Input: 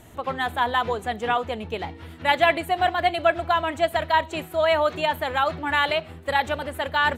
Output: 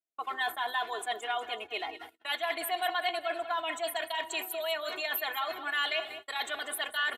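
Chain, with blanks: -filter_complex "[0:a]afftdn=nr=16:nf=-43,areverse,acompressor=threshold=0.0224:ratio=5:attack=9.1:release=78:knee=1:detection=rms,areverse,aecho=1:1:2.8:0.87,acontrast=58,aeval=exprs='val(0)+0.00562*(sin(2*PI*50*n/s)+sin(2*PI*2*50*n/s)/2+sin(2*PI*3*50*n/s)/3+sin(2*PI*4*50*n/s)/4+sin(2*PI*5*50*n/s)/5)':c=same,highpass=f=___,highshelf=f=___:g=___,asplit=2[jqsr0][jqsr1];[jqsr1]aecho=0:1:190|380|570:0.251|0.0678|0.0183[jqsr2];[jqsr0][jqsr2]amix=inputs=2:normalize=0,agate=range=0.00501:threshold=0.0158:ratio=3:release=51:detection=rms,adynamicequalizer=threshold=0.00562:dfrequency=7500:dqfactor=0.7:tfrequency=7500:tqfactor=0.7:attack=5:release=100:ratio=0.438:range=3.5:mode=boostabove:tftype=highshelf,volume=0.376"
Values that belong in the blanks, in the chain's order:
570, 2500, 12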